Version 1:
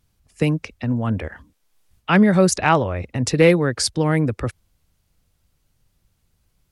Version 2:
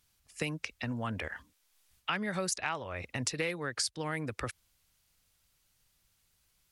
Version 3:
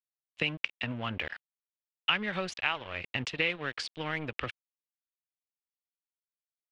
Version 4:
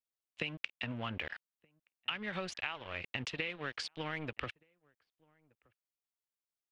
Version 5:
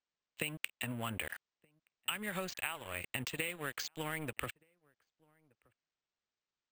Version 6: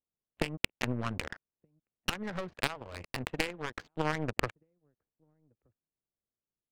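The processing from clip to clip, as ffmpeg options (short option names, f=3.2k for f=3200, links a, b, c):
-af "tiltshelf=f=810:g=-7.5,acompressor=threshold=-25dB:ratio=6,volume=-6dB"
-af "aeval=exprs='sgn(val(0))*max(abs(val(0))-0.00562,0)':c=same,lowpass=f=3k:t=q:w=3.3,volume=1.5dB"
-filter_complex "[0:a]acompressor=threshold=-31dB:ratio=6,asplit=2[a][b];[b]adelay=1224,volume=-29dB,highshelf=f=4k:g=-27.6[c];[a][c]amix=inputs=2:normalize=0,volume=-2.5dB"
-af "acrusher=samples=4:mix=1:aa=0.000001"
-af "adynamicsmooth=sensitivity=4.5:basefreq=500,aeval=exprs='0.126*(cos(1*acos(clip(val(0)/0.126,-1,1)))-cos(1*PI/2))+0.0141*(cos(3*acos(clip(val(0)/0.126,-1,1)))-cos(3*PI/2))+0.0398*(cos(4*acos(clip(val(0)/0.126,-1,1)))-cos(4*PI/2))':c=same,volume=8.5dB"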